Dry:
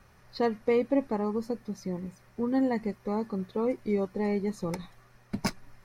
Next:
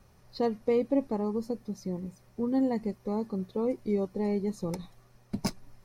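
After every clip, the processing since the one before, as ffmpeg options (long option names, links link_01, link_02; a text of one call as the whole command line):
ffmpeg -i in.wav -af "equalizer=frequency=1700:width_type=o:width=1.5:gain=-9" out.wav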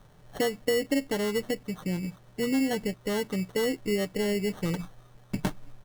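ffmpeg -i in.wav -af "aecho=1:1:6.7:0.49,acompressor=threshold=-26dB:ratio=5,acrusher=samples=18:mix=1:aa=0.000001,volume=3.5dB" out.wav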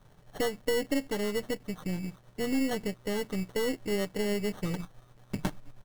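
ffmpeg -i in.wav -af "aeval=exprs='if(lt(val(0),0),0.447*val(0),val(0))':channel_layout=same" out.wav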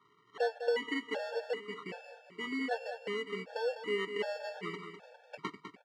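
ffmpeg -i in.wav -filter_complex "[0:a]highpass=540,lowpass=2900,asplit=2[link_01][link_02];[link_02]aecho=0:1:202|404|606|808|1010:0.355|0.167|0.0784|0.0368|0.0173[link_03];[link_01][link_03]amix=inputs=2:normalize=0,afftfilt=real='re*gt(sin(2*PI*1.3*pts/sr)*(1-2*mod(floor(b*sr/1024/460),2)),0)':imag='im*gt(sin(2*PI*1.3*pts/sr)*(1-2*mod(floor(b*sr/1024/460),2)),0)':win_size=1024:overlap=0.75,volume=4dB" out.wav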